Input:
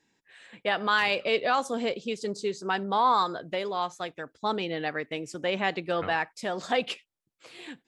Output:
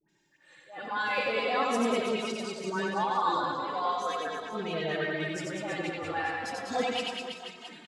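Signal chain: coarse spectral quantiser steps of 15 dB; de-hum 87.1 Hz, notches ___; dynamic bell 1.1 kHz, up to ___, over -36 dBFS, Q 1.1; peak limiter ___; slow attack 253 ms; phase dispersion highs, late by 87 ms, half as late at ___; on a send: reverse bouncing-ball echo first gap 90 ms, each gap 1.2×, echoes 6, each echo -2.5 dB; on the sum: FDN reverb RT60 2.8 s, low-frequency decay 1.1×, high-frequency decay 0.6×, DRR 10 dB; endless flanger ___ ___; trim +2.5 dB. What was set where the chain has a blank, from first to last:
2, +3 dB, -21.5 dBFS, 1.1 kHz, 2.8 ms, -0.38 Hz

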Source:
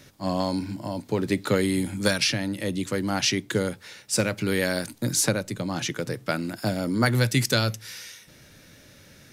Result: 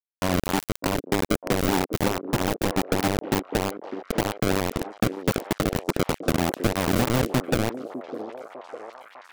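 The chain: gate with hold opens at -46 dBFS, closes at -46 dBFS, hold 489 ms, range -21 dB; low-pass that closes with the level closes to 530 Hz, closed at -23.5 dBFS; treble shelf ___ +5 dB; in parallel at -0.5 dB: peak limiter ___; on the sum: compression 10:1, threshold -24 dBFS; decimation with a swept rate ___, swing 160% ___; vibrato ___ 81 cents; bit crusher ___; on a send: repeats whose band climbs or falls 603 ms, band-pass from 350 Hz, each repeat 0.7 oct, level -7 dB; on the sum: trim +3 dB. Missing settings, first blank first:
4.7 kHz, -20.5 dBFS, 29×, 3.2 Hz, 7.7 Hz, 4-bit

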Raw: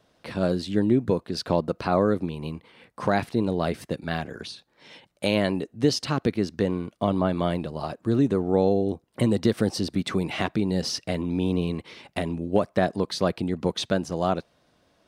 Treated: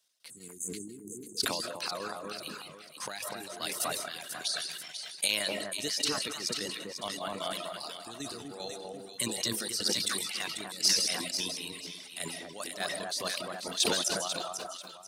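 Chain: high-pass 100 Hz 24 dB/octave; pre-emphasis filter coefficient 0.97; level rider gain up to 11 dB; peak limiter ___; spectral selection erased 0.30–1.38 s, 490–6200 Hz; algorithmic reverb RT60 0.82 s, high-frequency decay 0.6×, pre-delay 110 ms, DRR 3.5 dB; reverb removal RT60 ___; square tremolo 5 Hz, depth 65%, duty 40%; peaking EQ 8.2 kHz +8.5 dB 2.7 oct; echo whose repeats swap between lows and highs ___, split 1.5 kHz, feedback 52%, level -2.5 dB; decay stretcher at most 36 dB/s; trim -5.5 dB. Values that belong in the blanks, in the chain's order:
-16 dBFS, 1.7 s, 246 ms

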